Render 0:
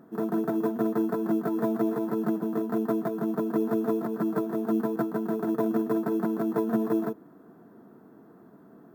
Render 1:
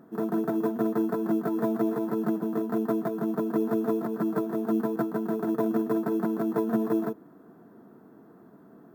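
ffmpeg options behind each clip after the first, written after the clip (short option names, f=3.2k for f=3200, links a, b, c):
-af anull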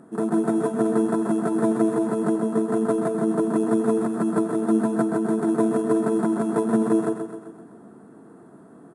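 -af "aexciter=amount=3.3:drive=9.4:freq=8k,aresample=22050,aresample=44100,aecho=1:1:129|258|387|516|645|774|903:0.422|0.228|0.123|0.0664|0.0359|0.0194|0.0105,volume=4.5dB"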